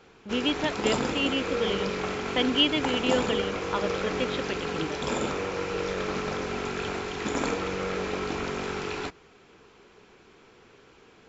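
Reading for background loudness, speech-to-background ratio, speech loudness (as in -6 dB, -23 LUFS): -30.5 LUFS, 1.5 dB, -29.0 LUFS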